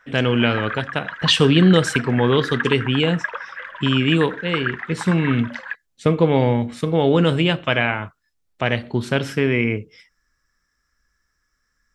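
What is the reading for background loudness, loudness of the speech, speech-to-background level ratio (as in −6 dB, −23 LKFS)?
−29.5 LKFS, −19.5 LKFS, 10.0 dB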